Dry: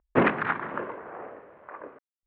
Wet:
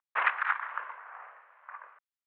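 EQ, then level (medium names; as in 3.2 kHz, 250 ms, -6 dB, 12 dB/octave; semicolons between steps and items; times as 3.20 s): high-pass 1 kHz 24 dB/octave; low-pass 3.4 kHz 12 dB/octave; 0.0 dB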